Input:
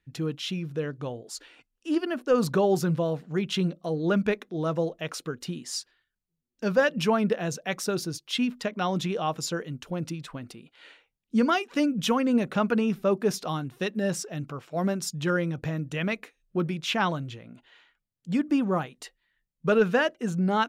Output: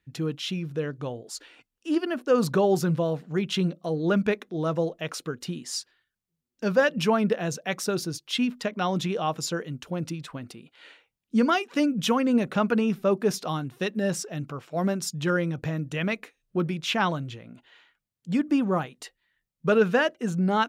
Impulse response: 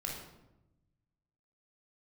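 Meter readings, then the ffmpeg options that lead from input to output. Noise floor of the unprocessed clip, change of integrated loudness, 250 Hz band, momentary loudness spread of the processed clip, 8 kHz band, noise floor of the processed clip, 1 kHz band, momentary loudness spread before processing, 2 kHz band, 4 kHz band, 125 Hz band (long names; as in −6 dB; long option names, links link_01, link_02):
−82 dBFS, +1.0 dB, +1.0 dB, 12 LU, +1.0 dB, −85 dBFS, +1.0 dB, 12 LU, +1.0 dB, +1.0 dB, +1.0 dB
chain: -af "highpass=40,volume=1dB"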